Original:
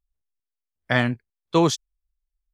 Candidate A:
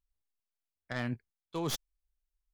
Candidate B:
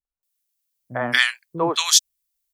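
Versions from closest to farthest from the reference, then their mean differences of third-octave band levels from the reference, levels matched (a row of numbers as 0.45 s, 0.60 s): A, B; 5.5 dB, 13.5 dB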